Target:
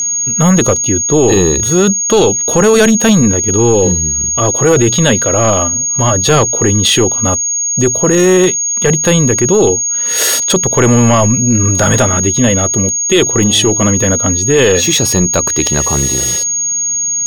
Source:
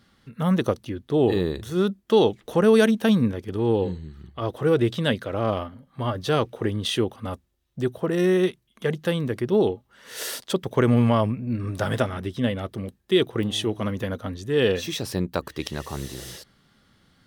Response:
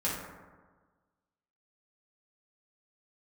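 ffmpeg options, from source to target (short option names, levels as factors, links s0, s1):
-af "aeval=exprs='val(0)+0.0355*sin(2*PI*6600*n/s)':c=same,apsyclip=10.6,aeval=exprs='sgn(val(0))*max(abs(val(0))-0.0133,0)':c=same,volume=0.668"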